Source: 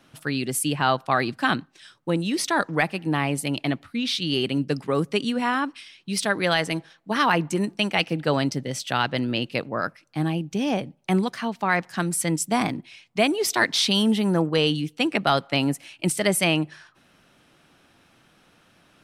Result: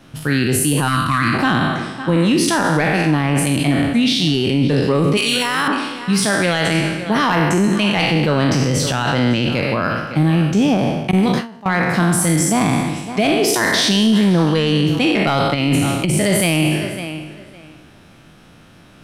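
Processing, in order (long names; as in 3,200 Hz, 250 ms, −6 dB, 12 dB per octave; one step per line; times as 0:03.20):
peak hold with a decay on every bin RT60 0.99 s
0:05.17–0:05.68: spectral tilt +4.5 dB per octave
tape delay 557 ms, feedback 20%, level −16 dB, low-pass 4,000 Hz
0:15.54–0:16.17: compressor whose output falls as the input rises −23 dBFS, ratio −0.5
low-shelf EQ 250 Hz +10.5 dB
soft clipping −6.5 dBFS, distortion −22 dB
0:00.88–0:01.34: gain on a spectral selection 330–950 Hz −19 dB
0:11.11–0:11.66: noise gate with hold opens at −9 dBFS
brickwall limiter −14.5 dBFS, peak gain reduction 7 dB
level +6.5 dB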